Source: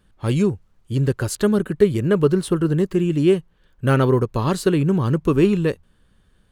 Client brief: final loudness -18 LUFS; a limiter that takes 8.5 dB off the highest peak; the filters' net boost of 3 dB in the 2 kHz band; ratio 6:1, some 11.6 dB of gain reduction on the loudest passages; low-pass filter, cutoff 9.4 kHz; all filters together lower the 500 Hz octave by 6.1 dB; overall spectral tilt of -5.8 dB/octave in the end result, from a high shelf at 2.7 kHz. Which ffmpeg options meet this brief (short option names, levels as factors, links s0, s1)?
-af "lowpass=9400,equalizer=f=500:t=o:g=-9,equalizer=f=2000:t=o:g=3.5,highshelf=f=2700:g=3.5,acompressor=threshold=0.0447:ratio=6,volume=6.68,alimiter=limit=0.355:level=0:latency=1"